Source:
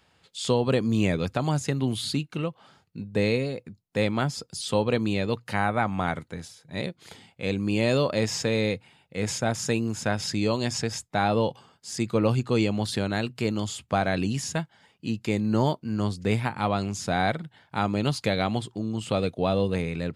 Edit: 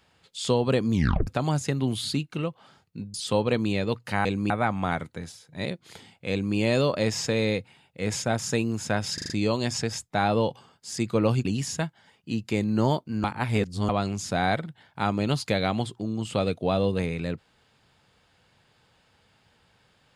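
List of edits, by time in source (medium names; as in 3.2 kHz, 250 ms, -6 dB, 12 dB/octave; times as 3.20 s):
0.93 s: tape stop 0.34 s
3.14–4.55 s: delete
7.47–7.72 s: copy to 5.66 s
10.30 s: stutter 0.04 s, 5 plays
12.45–14.21 s: delete
16.00–16.65 s: reverse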